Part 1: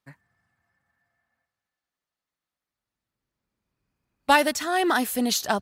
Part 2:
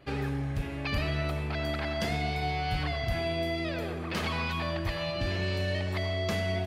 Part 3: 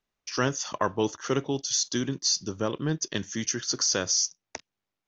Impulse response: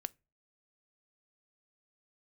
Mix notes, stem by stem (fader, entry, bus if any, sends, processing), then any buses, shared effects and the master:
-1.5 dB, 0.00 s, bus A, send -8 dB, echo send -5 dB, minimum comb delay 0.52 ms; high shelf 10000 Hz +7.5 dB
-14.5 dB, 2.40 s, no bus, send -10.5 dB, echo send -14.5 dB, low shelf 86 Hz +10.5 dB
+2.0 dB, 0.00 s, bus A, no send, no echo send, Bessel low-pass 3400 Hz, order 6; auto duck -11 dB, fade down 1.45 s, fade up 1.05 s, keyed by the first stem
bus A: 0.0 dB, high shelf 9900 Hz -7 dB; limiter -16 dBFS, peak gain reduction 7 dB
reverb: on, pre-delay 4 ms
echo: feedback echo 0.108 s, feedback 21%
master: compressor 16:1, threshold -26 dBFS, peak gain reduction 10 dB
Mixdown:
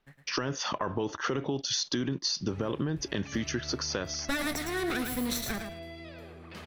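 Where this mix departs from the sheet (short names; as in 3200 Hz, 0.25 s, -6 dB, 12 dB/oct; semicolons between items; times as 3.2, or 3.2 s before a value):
stem 1 -1.5 dB -> -9.0 dB; stem 2: missing low shelf 86 Hz +10.5 dB; stem 3 +2.0 dB -> +9.5 dB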